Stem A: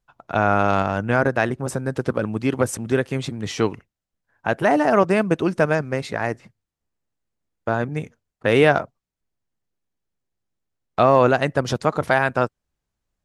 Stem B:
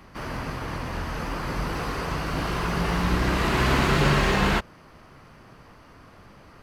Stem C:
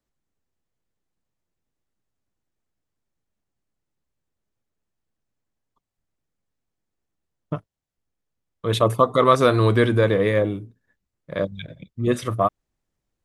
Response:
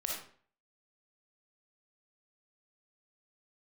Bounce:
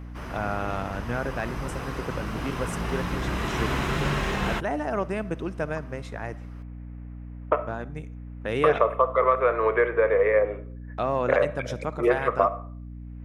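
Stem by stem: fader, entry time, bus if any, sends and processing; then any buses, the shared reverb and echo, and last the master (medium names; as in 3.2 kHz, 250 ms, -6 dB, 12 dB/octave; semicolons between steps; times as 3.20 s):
-12.0 dB, 0.00 s, send -18.5 dB, none
-5.5 dB, 0.00 s, no send, none
-2.0 dB, 0.00 s, send -12 dB, elliptic band-pass 450–2300 Hz; three bands compressed up and down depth 100%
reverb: on, RT60 0.50 s, pre-delay 15 ms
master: band-stop 4.5 kHz, Q 7.8; hum 60 Hz, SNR 12 dB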